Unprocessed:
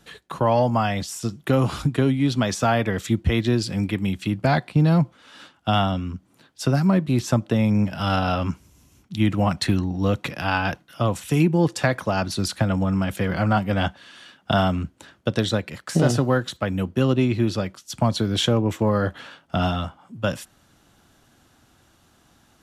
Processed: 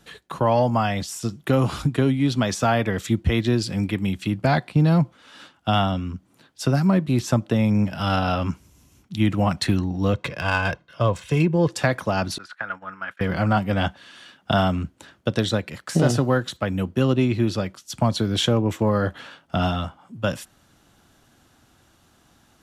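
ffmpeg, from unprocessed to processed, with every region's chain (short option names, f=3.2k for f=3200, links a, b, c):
-filter_complex "[0:a]asettb=1/sr,asplit=3[a][b][c];[a]atrim=end=10.134[d];[b]atrim=start=10.13:end=11.71,asetpts=PTS-STARTPTS,afade=t=in:d=0.004:c=qsin,afade=t=out:st=1.576:d=0.004:c=qsin,aecho=1:1:1.9:0.49,atrim=end_sample=69678,adynamicsmooth=sensitivity=3.5:basefreq=4.8k[e];[c]atrim=start=11.706[f];[d][e]acrossfade=d=0.004:c1=hsin:c2=qsin[g];[g][f]acrossfade=d=0.004:c1=qsin:c2=hsin,asettb=1/sr,asplit=3[h][i][j];[h]atrim=end=12.384[k];[i]atrim=start=12.38:end=13.21,asetpts=PTS-STARTPTS,afade=t=in:d=0.004:c=qsin,afade=t=out:st=0.826:d=0.004:c=qsin,acontrast=65,bandpass=f=1.5k:t=q:w=3.6,agate=range=-33dB:threshold=-36dB:ratio=3:release=100:detection=peak[l];[j]atrim=start=13.206[m];[k][l]acrossfade=d=0.004:c1=hsin:c2=qsin[n];[n][m]acrossfade=d=0.004:c1=qsin:c2=hsin"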